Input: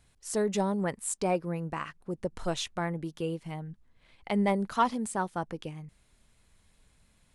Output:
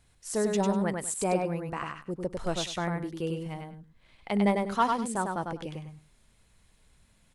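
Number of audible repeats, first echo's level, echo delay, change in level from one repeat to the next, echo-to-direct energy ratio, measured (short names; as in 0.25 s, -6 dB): 2, -4.0 dB, 99 ms, -14.0 dB, -4.0 dB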